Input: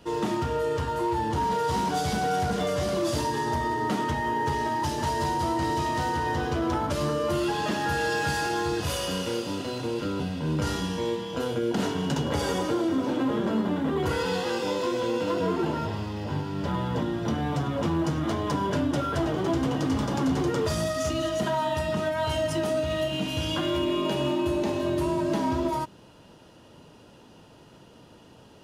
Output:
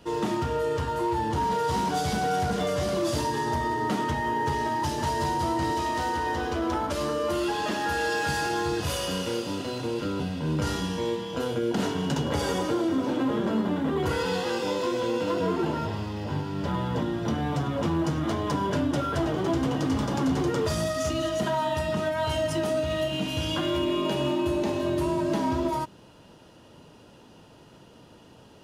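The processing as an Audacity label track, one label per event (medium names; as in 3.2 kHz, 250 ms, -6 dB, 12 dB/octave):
5.720000	8.290000	peaking EQ 130 Hz -11.5 dB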